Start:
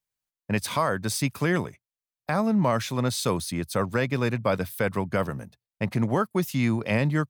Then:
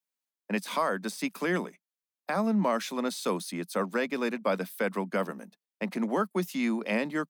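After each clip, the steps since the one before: steep high-pass 180 Hz 72 dB/oct; de-esser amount 60%; gain -3 dB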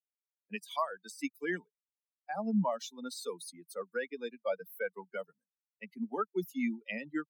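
per-bin expansion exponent 3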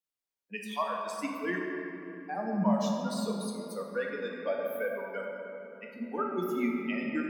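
shoebox room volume 160 m³, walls hard, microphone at 0.52 m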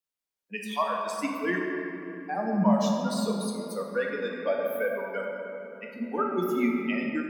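AGC gain up to 4.5 dB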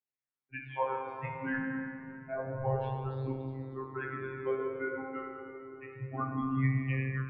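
robotiser 132 Hz; mistuned SSB -130 Hz 200–2700 Hz; chorus 0.29 Hz, delay 15.5 ms, depth 3.3 ms

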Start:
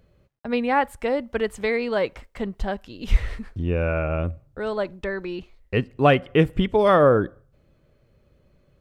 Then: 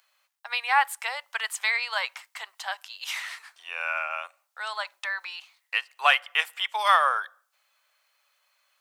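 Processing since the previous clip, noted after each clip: steep high-pass 830 Hz 36 dB/oct; high shelf 3200 Hz +11 dB; gain +1 dB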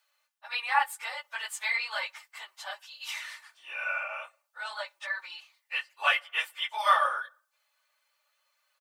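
phase scrambler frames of 50 ms; comb 3.4 ms, depth 49%; gain -5.5 dB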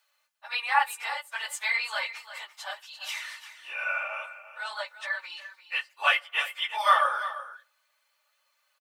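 echo 0.345 s -13.5 dB; gain +2 dB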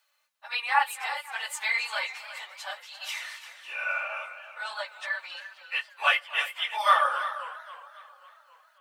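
warbling echo 0.27 s, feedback 60%, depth 188 cents, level -17 dB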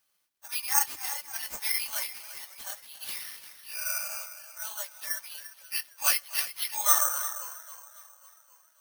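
careless resampling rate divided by 6×, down none, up zero stuff; gain -9.5 dB

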